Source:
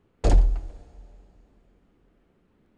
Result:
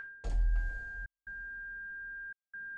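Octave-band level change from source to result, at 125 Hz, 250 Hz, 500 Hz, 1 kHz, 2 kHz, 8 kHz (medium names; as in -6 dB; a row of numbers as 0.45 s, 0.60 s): -12.5 dB, -21.5 dB, -22.0 dB, under -15 dB, +13.5 dB, no reading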